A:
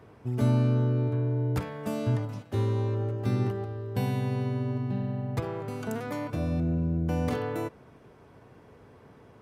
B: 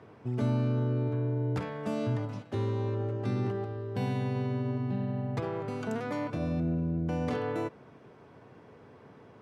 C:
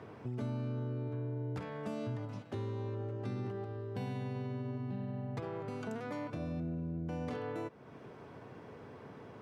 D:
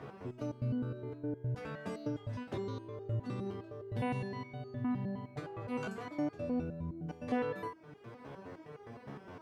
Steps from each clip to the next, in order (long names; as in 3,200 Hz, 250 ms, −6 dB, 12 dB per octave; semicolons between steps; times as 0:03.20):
Bessel low-pass filter 5,500 Hz, order 2; in parallel at +3 dB: brickwall limiter −24.5 dBFS, peak gain reduction 10 dB; on the sum: high-pass filter 110 Hz; level −7 dB
downward compressor 2 to 1, threshold −48 dBFS, peak gain reduction 13 dB; level +3 dB
step-sequenced resonator 9.7 Hz 70–410 Hz; level +12 dB